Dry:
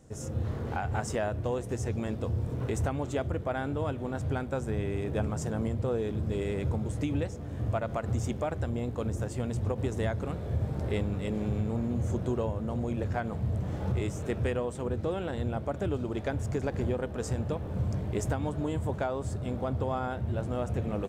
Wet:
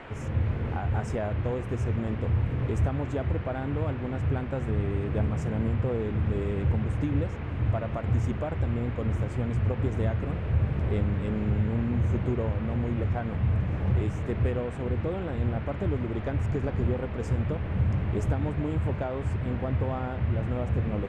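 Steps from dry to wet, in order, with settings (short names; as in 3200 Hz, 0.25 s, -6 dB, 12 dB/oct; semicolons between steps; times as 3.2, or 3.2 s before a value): band noise 220–2500 Hz -42 dBFS; tilt -2.5 dB/oct; gain -3 dB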